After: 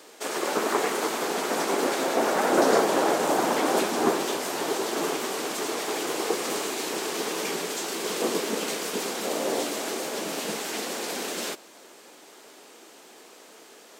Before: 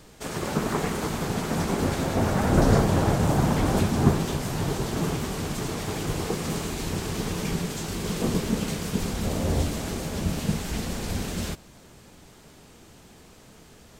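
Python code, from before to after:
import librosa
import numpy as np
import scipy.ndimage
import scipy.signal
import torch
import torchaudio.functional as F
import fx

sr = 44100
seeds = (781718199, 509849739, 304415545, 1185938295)

y = scipy.signal.sosfilt(scipy.signal.butter(4, 320.0, 'highpass', fs=sr, output='sos'), x)
y = y * 10.0 ** (4.0 / 20.0)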